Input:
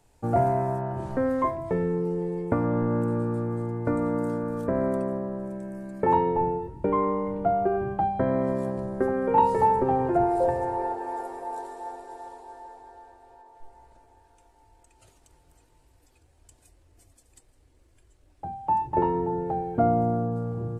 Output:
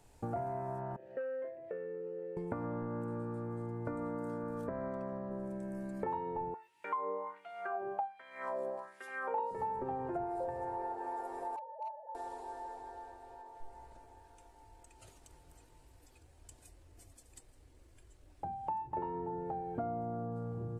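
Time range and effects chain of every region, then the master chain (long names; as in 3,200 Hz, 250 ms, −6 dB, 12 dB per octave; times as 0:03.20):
0:00.96–0:02.37: formant filter e + saturating transformer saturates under 480 Hz
0:04.69–0:05.31: low-pass filter 6,200 Hz 24 dB per octave + parametric band 350 Hz −6.5 dB 0.95 octaves
0:06.54–0:09.51: low-shelf EQ 210 Hz +9.5 dB + auto-filter high-pass sine 1.3 Hz 490–2,900 Hz
0:11.56–0:12.15: three sine waves on the formant tracks + moving average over 23 samples + gain into a clipping stage and back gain 32.5 dB
whole clip: dynamic equaliser 1,100 Hz, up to +4 dB, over −37 dBFS, Q 0.71; downward compressor 4 to 1, threshold −39 dBFS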